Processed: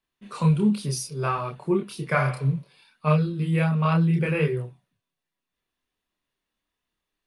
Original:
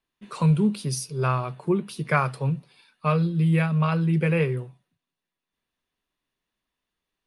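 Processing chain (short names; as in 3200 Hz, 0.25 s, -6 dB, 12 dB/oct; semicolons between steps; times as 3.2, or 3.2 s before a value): chorus voices 2, 0.65 Hz, delay 28 ms, depth 2.1 ms; spectral repair 2.2–2.59, 500–3700 Hz both; gain +3 dB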